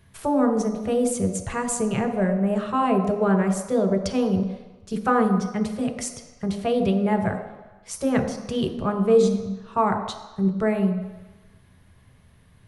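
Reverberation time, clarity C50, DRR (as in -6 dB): 1.1 s, 7.0 dB, 2.5 dB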